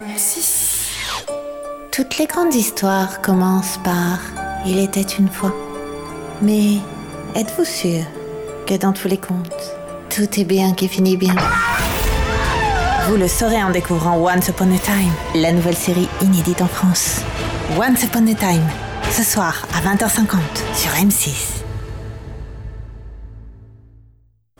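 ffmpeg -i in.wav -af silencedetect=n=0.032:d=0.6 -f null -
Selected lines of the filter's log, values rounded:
silence_start: 23.47
silence_end: 24.60 | silence_duration: 1.13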